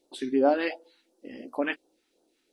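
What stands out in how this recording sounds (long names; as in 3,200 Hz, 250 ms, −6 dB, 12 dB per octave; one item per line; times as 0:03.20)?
phaser sweep stages 2, 2.8 Hz, lowest notch 560–2,100 Hz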